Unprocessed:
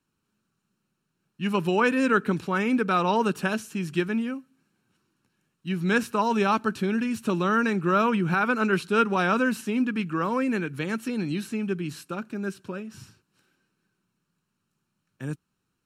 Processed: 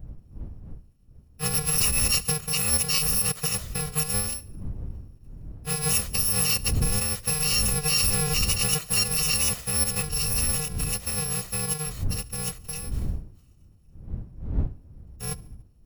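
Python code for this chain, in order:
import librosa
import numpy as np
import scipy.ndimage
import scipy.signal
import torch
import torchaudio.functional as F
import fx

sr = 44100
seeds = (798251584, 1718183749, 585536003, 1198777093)

p1 = fx.bit_reversed(x, sr, seeds[0], block=128)
p2 = fx.dmg_wind(p1, sr, seeds[1], corner_hz=82.0, level_db=-33.0)
p3 = np.clip(10.0 ** (17.0 / 20.0) * p2, -1.0, 1.0) / 10.0 ** (17.0 / 20.0)
p4 = p3 + fx.echo_feedback(p3, sr, ms=72, feedback_pct=55, wet_db=-22, dry=0)
y = fx.pitch_keep_formants(p4, sr, semitones=-2.0)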